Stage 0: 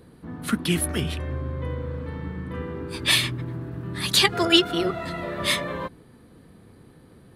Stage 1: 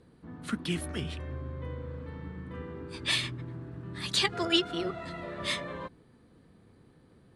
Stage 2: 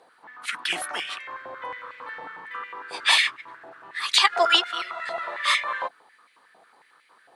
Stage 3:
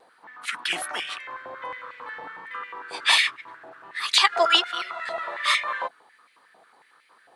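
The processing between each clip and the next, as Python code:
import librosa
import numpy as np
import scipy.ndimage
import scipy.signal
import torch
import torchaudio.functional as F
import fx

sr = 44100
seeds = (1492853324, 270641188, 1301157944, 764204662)

y1 = scipy.signal.sosfilt(scipy.signal.butter(4, 9100.0, 'lowpass', fs=sr, output='sos'), x)
y1 = y1 * 10.0 ** (-8.5 / 20.0)
y2 = fx.rider(y1, sr, range_db=4, speed_s=2.0)
y2 = fx.filter_held_highpass(y2, sr, hz=11.0, low_hz=740.0, high_hz=2200.0)
y2 = y2 * 10.0 ** (6.5 / 20.0)
y3 = fx.vibrato(y2, sr, rate_hz=1.3, depth_cents=25.0)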